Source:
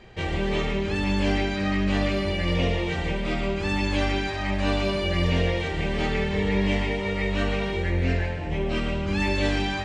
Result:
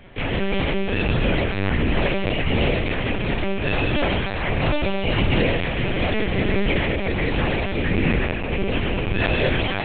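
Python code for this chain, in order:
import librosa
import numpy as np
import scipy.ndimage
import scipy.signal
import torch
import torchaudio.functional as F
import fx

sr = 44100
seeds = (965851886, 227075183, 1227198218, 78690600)

y = fx.rattle_buzz(x, sr, strikes_db=-30.0, level_db=-23.0)
y = fx.echo_feedback(y, sr, ms=334, feedback_pct=17, wet_db=-19.5)
y = fx.lpc_vocoder(y, sr, seeds[0], excitation='pitch_kept', order=8)
y = y * 10.0 ** (3.5 / 20.0)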